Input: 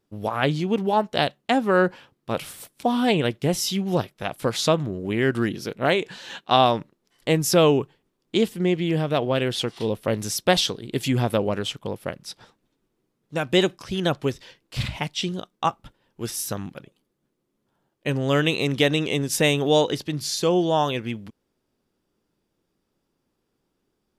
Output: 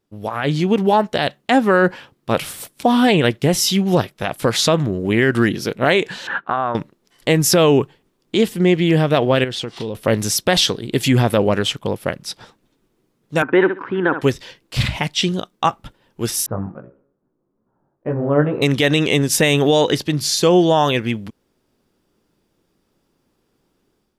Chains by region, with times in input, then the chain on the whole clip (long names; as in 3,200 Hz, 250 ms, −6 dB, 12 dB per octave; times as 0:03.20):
0:06.27–0:06.75: downward compressor 5 to 1, threshold −30 dBFS + low-pass with resonance 1,400 Hz, resonance Q 4.3
0:09.44–0:09.95: parametric band 11,000 Hz −10.5 dB 0.42 octaves + downward compressor 4 to 1, threshold −31 dBFS
0:13.42–0:14.21: loudspeaker in its box 270–2,000 Hz, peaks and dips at 290 Hz +8 dB, 430 Hz +4 dB, 630 Hz −9 dB, 940 Hz +8 dB, 1,500 Hz +8 dB + flutter between parallel walls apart 11.1 metres, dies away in 0.28 s
0:16.46–0:18.62: low-pass filter 1,300 Hz 24 dB per octave + hum removal 69.59 Hz, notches 37 + chorus effect 2.4 Hz, delay 16 ms, depth 5.6 ms
whole clip: dynamic equaliser 1,800 Hz, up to +4 dB, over −40 dBFS, Q 2.7; brickwall limiter −13 dBFS; automatic gain control gain up to 8.5 dB